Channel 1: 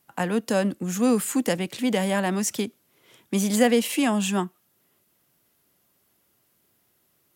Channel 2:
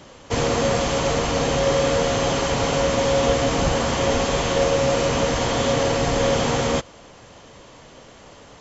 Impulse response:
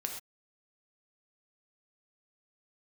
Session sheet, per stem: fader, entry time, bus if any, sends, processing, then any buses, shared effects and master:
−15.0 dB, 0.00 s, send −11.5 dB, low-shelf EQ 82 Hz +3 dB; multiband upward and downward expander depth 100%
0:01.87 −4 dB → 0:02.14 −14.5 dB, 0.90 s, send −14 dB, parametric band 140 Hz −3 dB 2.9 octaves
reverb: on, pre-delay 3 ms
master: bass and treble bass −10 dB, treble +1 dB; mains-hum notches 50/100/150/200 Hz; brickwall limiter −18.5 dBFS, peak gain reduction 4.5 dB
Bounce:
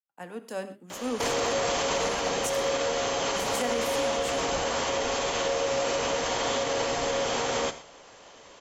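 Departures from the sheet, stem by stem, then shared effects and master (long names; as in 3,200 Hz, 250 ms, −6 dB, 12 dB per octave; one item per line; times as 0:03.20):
stem 2 −4.0 dB → +4.0 dB
reverb return +7.5 dB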